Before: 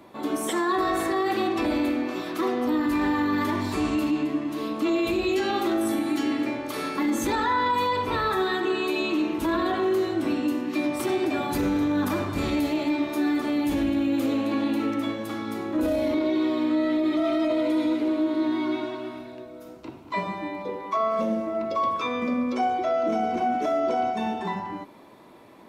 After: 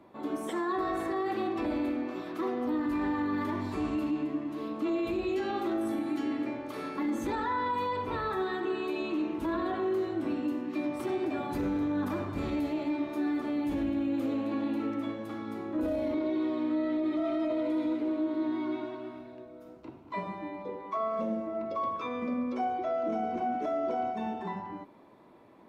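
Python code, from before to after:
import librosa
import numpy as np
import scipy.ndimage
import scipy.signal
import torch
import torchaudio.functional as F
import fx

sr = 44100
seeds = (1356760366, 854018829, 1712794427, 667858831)

y = fx.high_shelf(x, sr, hz=2800.0, db=-11.0)
y = F.gain(torch.from_numpy(y), -6.0).numpy()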